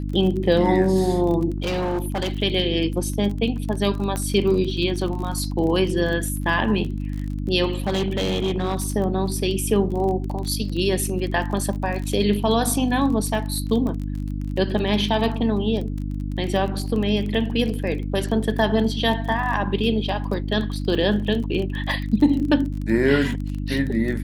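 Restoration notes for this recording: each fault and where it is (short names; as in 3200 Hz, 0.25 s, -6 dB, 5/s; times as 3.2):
crackle 28/s -28 dBFS
hum 50 Hz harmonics 6 -27 dBFS
1.58–2.34 clipped -20 dBFS
4.16 pop -13 dBFS
7.74–8.9 clipped -18 dBFS
20.95 gap 3.4 ms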